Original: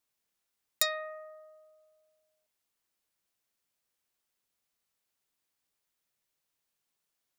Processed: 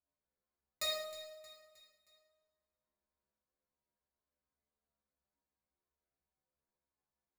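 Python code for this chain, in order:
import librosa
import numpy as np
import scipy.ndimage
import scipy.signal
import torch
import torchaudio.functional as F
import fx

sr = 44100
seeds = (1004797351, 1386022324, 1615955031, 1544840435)

p1 = fx.wiener(x, sr, points=15)
p2 = fx.lowpass(p1, sr, hz=3900.0, slope=6)
p3 = fx.low_shelf(p2, sr, hz=200.0, db=7.0)
p4 = fx.notch(p3, sr, hz=1900.0, q=20.0)
p5 = fx.stiff_resonator(p4, sr, f0_hz=70.0, decay_s=0.45, stiffness=0.002)
p6 = p5 + fx.echo_feedback(p5, sr, ms=313, feedback_pct=48, wet_db=-15, dry=0)
p7 = fx.rev_double_slope(p6, sr, seeds[0], early_s=0.75, late_s=1.9, knee_db=-18, drr_db=-4.5)
y = F.gain(torch.from_numpy(p7), 2.0).numpy()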